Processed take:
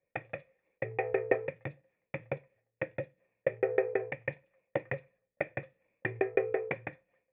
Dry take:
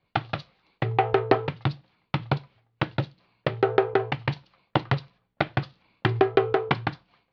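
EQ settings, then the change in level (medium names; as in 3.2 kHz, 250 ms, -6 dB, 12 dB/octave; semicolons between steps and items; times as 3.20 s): dynamic bell 2.3 kHz, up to +8 dB, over -51 dBFS, Q 4.6; cascade formant filter e; +3.0 dB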